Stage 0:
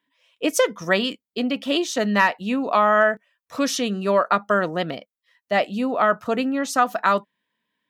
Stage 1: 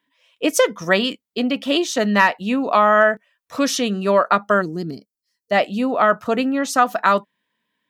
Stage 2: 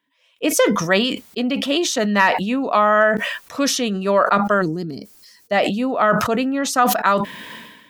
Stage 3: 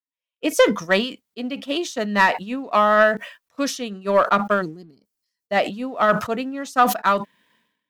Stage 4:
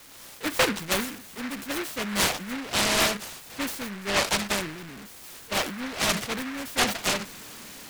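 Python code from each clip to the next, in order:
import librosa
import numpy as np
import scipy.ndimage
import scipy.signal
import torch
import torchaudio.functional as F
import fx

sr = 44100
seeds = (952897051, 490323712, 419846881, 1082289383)

y1 = fx.spec_box(x, sr, start_s=4.62, length_s=0.89, low_hz=460.0, high_hz=4100.0, gain_db=-21)
y1 = y1 * librosa.db_to_amplitude(3.0)
y2 = fx.sustainer(y1, sr, db_per_s=48.0)
y2 = y2 * librosa.db_to_amplitude(-1.0)
y3 = fx.leveller(y2, sr, passes=1)
y3 = fx.upward_expand(y3, sr, threshold_db=-29.0, expansion=2.5)
y4 = y3 + 0.5 * 10.0 ** (-28.0 / 20.0) * np.sign(y3)
y4 = fx.noise_mod_delay(y4, sr, seeds[0], noise_hz=1600.0, depth_ms=0.31)
y4 = y4 * librosa.db_to_amplitude(-8.5)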